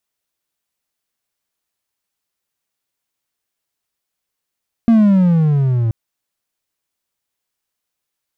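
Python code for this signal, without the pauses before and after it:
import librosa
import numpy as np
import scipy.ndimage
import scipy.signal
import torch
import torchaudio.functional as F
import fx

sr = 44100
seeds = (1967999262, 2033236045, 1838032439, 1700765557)

y = fx.riser_tone(sr, length_s=1.03, level_db=-4.5, wave='triangle', hz=234.0, rise_st=-13.0, swell_db=-7.0)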